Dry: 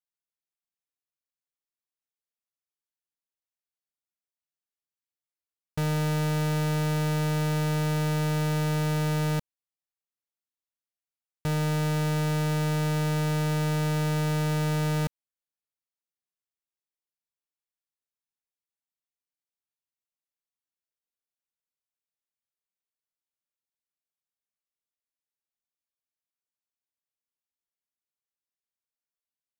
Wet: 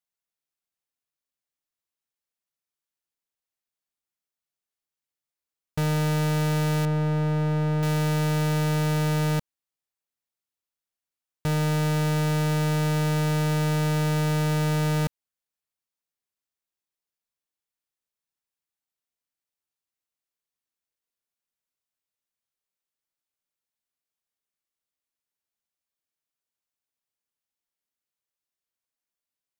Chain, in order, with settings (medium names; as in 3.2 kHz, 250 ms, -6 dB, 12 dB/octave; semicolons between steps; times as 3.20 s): 6.85–7.83 s: low-pass 1.2 kHz 6 dB/octave; trim +2.5 dB